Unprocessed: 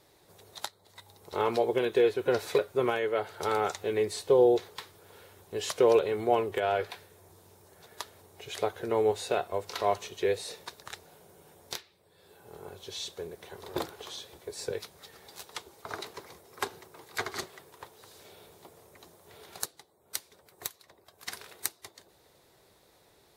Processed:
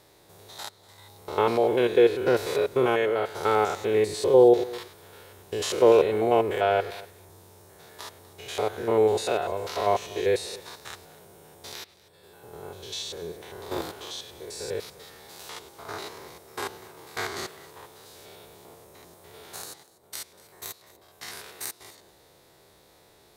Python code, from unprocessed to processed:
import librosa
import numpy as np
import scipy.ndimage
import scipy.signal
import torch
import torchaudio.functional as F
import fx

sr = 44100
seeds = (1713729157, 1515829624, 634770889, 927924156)

y = fx.spec_steps(x, sr, hold_ms=100)
y = y + 10.0 ** (-21.0 / 20.0) * np.pad(y, (int(244 * sr / 1000.0), 0))[:len(y)]
y = F.gain(torch.from_numpy(y), 6.5).numpy()